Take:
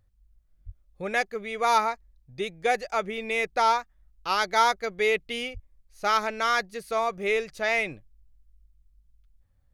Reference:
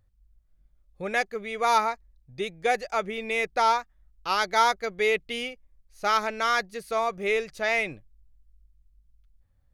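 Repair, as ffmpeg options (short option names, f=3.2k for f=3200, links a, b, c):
-filter_complex "[0:a]asplit=3[a][b][c];[a]afade=t=out:st=0.65:d=0.02[d];[b]highpass=f=140:w=0.5412,highpass=f=140:w=1.3066,afade=t=in:st=0.65:d=0.02,afade=t=out:st=0.77:d=0.02[e];[c]afade=t=in:st=0.77:d=0.02[f];[d][e][f]amix=inputs=3:normalize=0,asplit=3[g][h][i];[g]afade=t=out:st=5.53:d=0.02[j];[h]highpass=f=140:w=0.5412,highpass=f=140:w=1.3066,afade=t=in:st=5.53:d=0.02,afade=t=out:st=5.65:d=0.02[k];[i]afade=t=in:st=5.65:d=0.02[l];[j][k][l]amix=inputs=3:normalize=0"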